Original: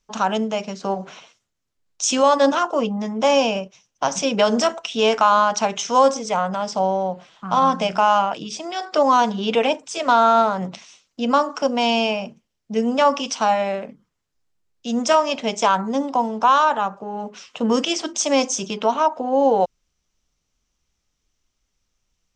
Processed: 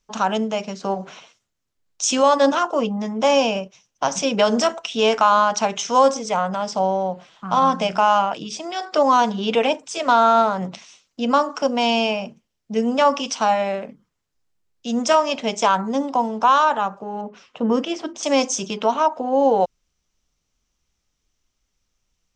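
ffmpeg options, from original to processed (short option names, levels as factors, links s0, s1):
-filter_complex "[0:a]asettb=1/sr,asplit=3[s0][s1][s2];[s0]atrim=end=17.214[s3];[s1]atrim=start=17.21:end=18.23,asetpts=PTS-STARTPTS,afade=t=in:d=0.004:c=qsin,afade=t=out:st=1.016:d=0.004:c=qsin,lowpass=f=1400:p=1[s4];[s2]atrim=start=18.226[s5];[s3][s4]acrossfade=d=0.004:c1=hsin:c2=qsin[s6];[s6][s5]acrossfade=d=0.004:c1=qsin:c2=hsin"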